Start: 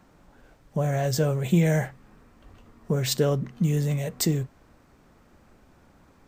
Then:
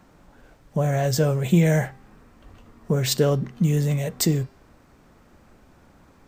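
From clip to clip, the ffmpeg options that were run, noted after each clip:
-af "bandreject=f=395.8:t=h:w=4,bandreject=f=791.6:t=h:w=4,bandreject=f=1.1874k:t=h:w=4,bandreject=f=1.5832k:t=h:w=4,bandreject=f=1.979k:t=h:w=4,bandreject=f=2.3748k:t=h:w=4,bandreject=f=2.7706k:t=h:w=4,bandreject=f=3.1664k:t=h:w=4,bandreject=f=3.5622k:t=h:w=4,bandreject=f=3.958k:t=h:w=4,bandreject=f=4.3538k:t=h:w=4,bandreject=f=4.7496k:t=h:w=4,bandreject=f=5.1454k:t=h:w=4,bandreject=f=5.5412k:t=h:w=4,volume=3dB"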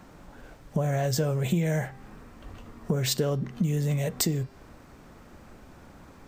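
-af "acompressor=threshold=-29dB:ratio=4,volume=4dB"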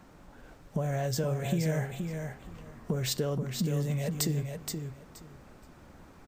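-af "aecho=1:1:474|948|1422:0.501|0.0902|0.0162,volume=-4.5dB"

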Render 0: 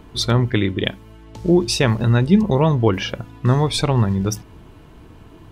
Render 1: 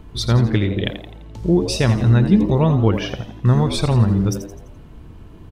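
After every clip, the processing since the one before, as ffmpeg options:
-filter_complex "[0:a]lowshelf=f=130:g=11,asplit=2[a][b];[b]asplit=5[c][d][e][f][g];[c]adelay=85,afreqshift=97,volume=-11dB[h];[d]adelay=170,afreqshift=194,volume=-17.9dB[i];[e]adelay=255,afreqshift=291,volume=-24.9dB[j];[f]adelay=340,afreqshift=388,volume=-31.8dB[k];[g]adelay=425,afreqshift=485,volume=-38.7dB[l];[h][i][j][k][l]amix=inputs=5:normalize=0[m];[a][m]amix=inputs=2:normalize=0,volume=-3.5dB"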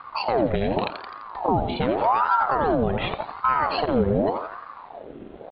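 -af "alimiter=limit=-13.5dB:level=0:latency=1:release=184,aresample=8000,aeval=exprs='sgn(val(0))*max(abs(val(0))-0.00299,0)':c=same,aresample=44100,aeval=exprs='val(0)*sin(2*PI*730*n/s+730*0.6/0.86*sin(2*PI*0.86*n/s))':c=same,volume=3.5dB"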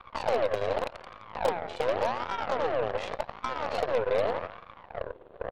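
-filter_complex "[0:a]acrossover=split=680|4500[a][b][c];[a]acompressor=threshold=-36dB:ratio=4[d];[b]acompressor=threshold=-35dB:ratio=4[e];[c]acompressor=threshold=-56dB:ratio=4[f];[d][e][f]amix=inputs=3:normalize=0,highpass=f=510:t=q:w=4.9,aeval=exprs='0.158*(cos(1*acos(clip(val(0)/0.158,-1,1)))-cos(1*PI/2))+0.0178*(cos(3*acos(clip(val(0)/0.158,-1,1)))-cos(3*PI/2))+0.02*(cos(4*acos(clip(val(0)/0.158,-1,1)))-cos(4*PI/2))+0.00708*(cos(5*acos(clip(val(0)/0.158,-1,1)))-cos(5*PI/2))+0.0158*(cos(7*acos(clip(val(0)/0.158,-1,1)))-cos(7*PI/2))':c=same,volume=-2dB"

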